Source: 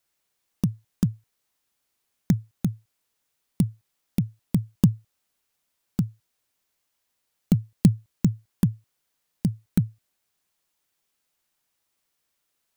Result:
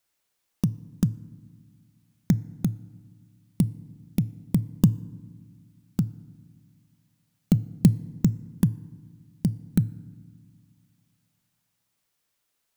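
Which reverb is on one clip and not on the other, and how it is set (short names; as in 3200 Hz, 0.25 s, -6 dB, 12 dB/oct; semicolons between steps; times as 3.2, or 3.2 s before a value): FDN reverb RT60 1.5 s, low-frequency decay 1.6×, high-frequency decay 0.5×, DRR 18.5 dB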